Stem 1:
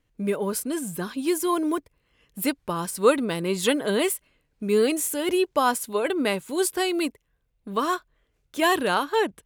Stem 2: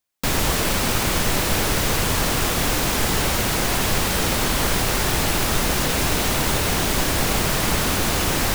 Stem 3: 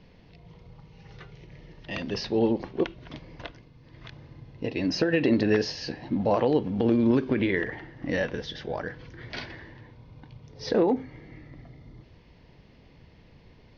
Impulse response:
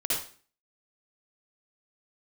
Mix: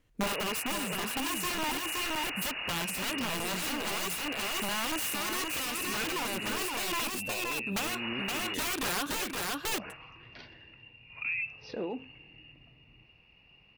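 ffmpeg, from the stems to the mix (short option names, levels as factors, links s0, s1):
-filter_complex "[0:a]acompressor=threshold=0.0708:ratio=5,aeval=exprs='(mod(16.8*val(0)+1,2)-1)/16.8':c=same,volume=1.26,asplit=2[s0][s1];[s1]volume=0.631[s2];[1:a]volume=0.531,asplit=3[s3][s4][s5];[s3]atrim=end=7.02,asetpts=PTS-STARTPTS,afade=t=out:st=7.016:d=0.004:c=hsin[s6];[s4]atrim=start=7.02:end=7.85,asetpts=PTS-STARTPTS,volume=0[s7];[s5]atrim=start=7.85,asetpts=PTS-STARTPTS,afade=t=in:d=0.004:c=hsin[s8];[s6][s7][s8]concat=n=3:v=0:a=1[s9];[2:a]adelay=500,volume=0.376,asplit=2[s10][s11];[s11]volume=0.562[s12];[s9][s10]amix=inputs=2:normalize=0,lowpass=f=2500:t=q:w=0.5098,lowpass=f=2500:t=q:w=0.6013,lowpass=f=2500:t=q:w=0.9,lowpass=f=2500:t=q:w=2.563,afreqshift=-2900,alimiter=level_in=1.06:limit=0.0631:level=0:latency=1:release=152,volume=0.944,volume=1[s13];[s2][s12]amix=inputs=2:normalize=0,aecho=0:1:520:1[s14];[s0][s13][s14]amix=inputs=3:normalize=0,alimiter=level_in=1.06:limit=0.0631:level=0:latency=1:release=292,volume=0.944"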